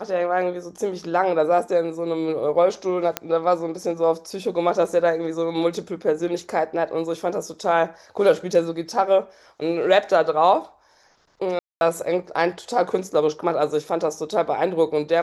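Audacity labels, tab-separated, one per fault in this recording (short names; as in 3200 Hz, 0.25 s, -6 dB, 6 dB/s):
3.170000	3.170000	pop -6 dBFS
11.590000	11.810000	gap 0.221 s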